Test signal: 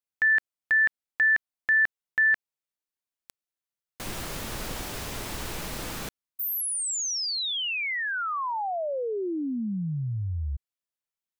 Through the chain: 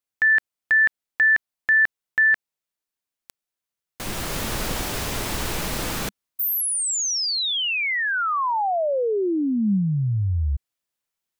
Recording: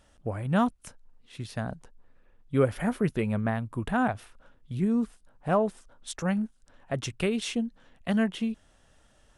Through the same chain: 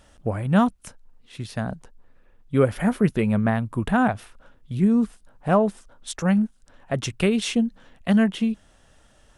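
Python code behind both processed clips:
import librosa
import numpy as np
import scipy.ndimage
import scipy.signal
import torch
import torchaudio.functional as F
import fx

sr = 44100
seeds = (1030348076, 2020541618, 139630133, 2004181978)

p1 = fx.dynamic_eq(x, sr, hz=200.0, q=4.8, threshold_db=-45.0, ratio=4.0, max_db=4)
p2 = fx.rider(p1, sr, range_db=4, speed_s=0.5)
y = p1 + (p2 * 10.0 ** (-1.0 / 20.0))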